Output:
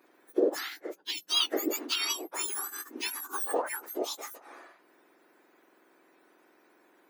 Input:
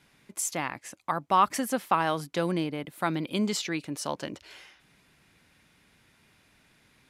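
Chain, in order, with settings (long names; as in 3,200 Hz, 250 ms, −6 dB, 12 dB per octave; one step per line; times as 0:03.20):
frequency axis turned over on the octave scale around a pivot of 1,900 Hz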